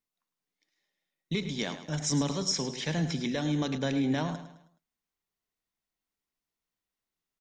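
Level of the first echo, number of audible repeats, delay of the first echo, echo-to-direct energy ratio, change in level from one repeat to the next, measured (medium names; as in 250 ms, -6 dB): -11.5 dB, 3, 106 ms, -11.0 dB, -8.0 dB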